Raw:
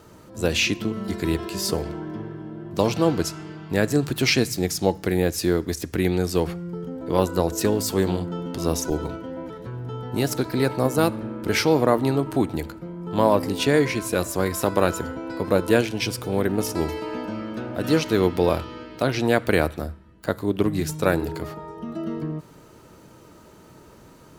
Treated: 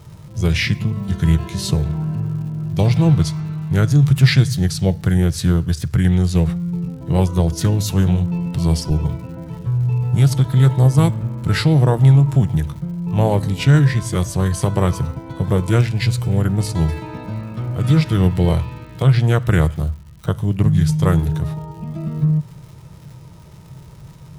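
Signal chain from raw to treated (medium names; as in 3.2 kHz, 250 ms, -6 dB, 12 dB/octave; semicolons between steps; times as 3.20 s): crackle 170 per s -39 dBFS; formant shift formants -3 st; resonant low shelf 190 Hz +9 dB, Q 3; trim +1 dB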